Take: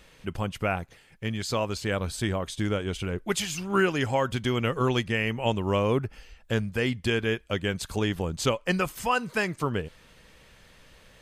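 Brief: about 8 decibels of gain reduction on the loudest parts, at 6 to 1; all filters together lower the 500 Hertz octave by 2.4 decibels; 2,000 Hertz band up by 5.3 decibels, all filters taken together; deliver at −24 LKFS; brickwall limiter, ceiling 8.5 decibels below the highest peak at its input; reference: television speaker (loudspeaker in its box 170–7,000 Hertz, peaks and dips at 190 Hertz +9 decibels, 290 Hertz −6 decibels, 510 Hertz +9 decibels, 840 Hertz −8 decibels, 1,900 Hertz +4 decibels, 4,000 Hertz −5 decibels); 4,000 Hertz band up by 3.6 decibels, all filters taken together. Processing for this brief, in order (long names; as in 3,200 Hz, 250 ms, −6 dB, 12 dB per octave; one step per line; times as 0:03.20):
parametric band 500 Hz −8 dB
parametric band 2,000 Hz +4 dB
parametric band 4,000 Hz +5 dB
downward compressor 6 to 1, threshold −28 dBFS
brickwall limiter −24 dBFS
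loudspeaker in its box 170–7,000 Hz, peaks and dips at 190 Hz +9 dB, 290 Hz −6 dB, 510 Hz +9 dB, 840 Hz −8 dB, 1,900 Hz +4 dB, 4,000 Hz −5 dB
level +11 dB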